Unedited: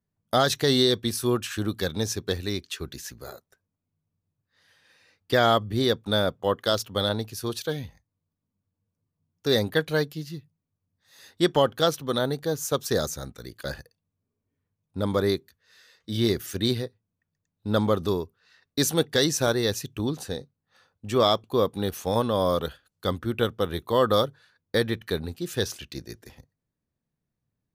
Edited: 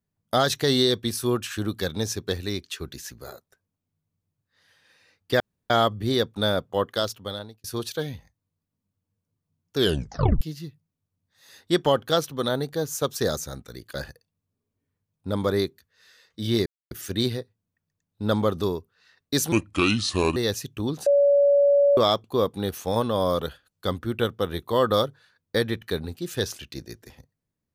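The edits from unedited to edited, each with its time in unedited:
5.40 s: insert room tone 0.30 s
6.57–7.34 s: fade out
9.47 s: tape stop 0.64 s
16.36 s: insert silence 0.25 s
18.97–19.56 s: speed 70%
20.26–21.17 s: bleep 568 Hz -14.5 dBFS

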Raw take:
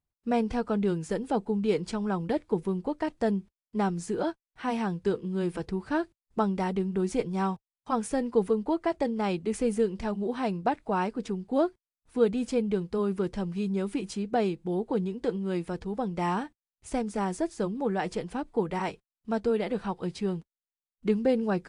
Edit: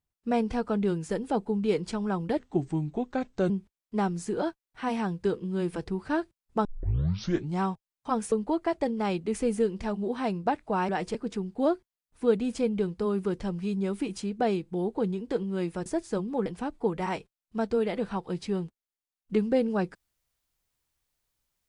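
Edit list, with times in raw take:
2.39–3.31 s: speed 83%
6.46 s: tape start 0.96 s
8.13–8.51 s: delete
15.79–17.33 s: delete
17.93–18.19 s: move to 11.08 s

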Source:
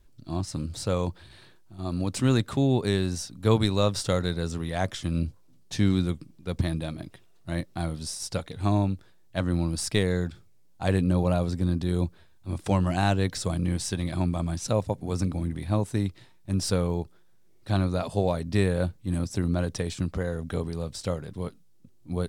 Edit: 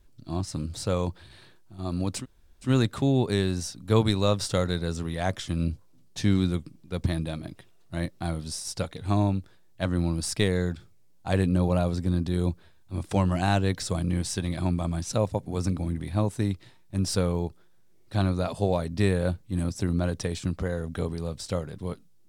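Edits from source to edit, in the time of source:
2.21 s: insert room tone 0.45 s, crossfade 0.10 s

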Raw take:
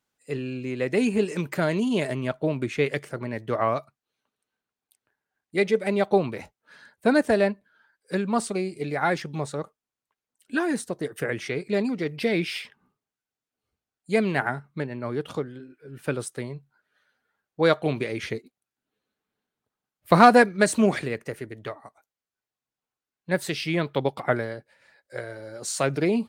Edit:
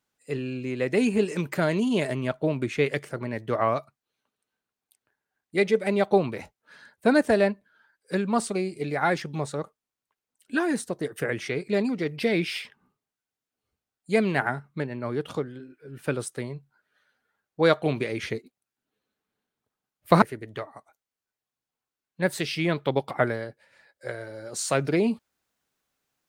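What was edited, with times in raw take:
20.22–21.31 s: delete

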